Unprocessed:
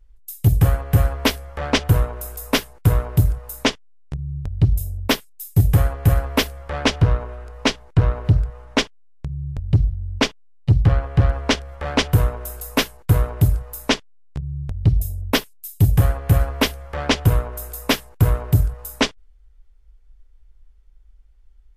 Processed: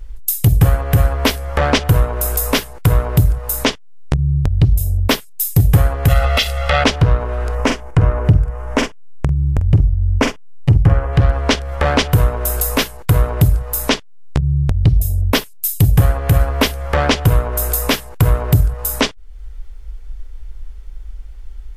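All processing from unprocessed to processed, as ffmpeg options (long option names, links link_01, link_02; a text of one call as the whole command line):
ffmpeg -i in.wav -filter_complex "[0:a]asettb=1/sr,asplit=3[link_01][link_02][link_03];[link_01]atrim=end=6.084[link_04];[link_02]atrim=start=6.08:end=6.84,asetpts=PTS-STARTPTS,afade=type=in:duration=0.004:curve=qsin,afade=type=out:start_time=0.756:duration=0.004:curve=qsin,equalizer=frequency=3300:width=0.62:gain=14,acompressor=threshold=-18dB:ratio=2.5:attack=3.2:release=140:knee=1:detection=peak,aecho=1:1:1.5:0.95,atrim=end_sample=33516[link_05];[link_03]atrim=start=6.836[link_06];[link_04][link_05]acrossfade=duration=0.004:curve1=hsin:curve2=qsin[link_07];[link_07][link_06]acrossfade=duration=0.004:curve1=qsin:curve2=hsin,asettb=1/sr,asplit=3[link_08][link_09][link_10];[link_08]atrim=end=7.554[link_11];[link_09]atrim=start=7.55:end=11.13,asetpts=PTS-STARTPTS,afade=type=in:duration=0.004:curve=qsin,afade=type=out:start_time=3.576:duration=0.004:curve=qsin,equalizer=frequency=4000:width_type=o:width=0.74:gain=-13,asplit=2[link_12][link_13];[link_13]adelay=46,volume=-9dB[link_14];[link_12][link_14]amix=inputs=2:normalize=0,atrim=end_sample=157878[link_15];[link_10]atrim=start=11.126[link_16];[link_11][link_15]acrossfade=duration=0.004:curve1=hsin:curve2=qsin[link_17];[link_17][link_16]acrossfade=duration=0.004:curve1=qsin:curve2=hsin,acompressor=threshold=-36dB:ratio=2.5,alimiter=level_in=21dB:limit=-1dB:release=50:level=0:latency=1,volume=-1dB" out.wav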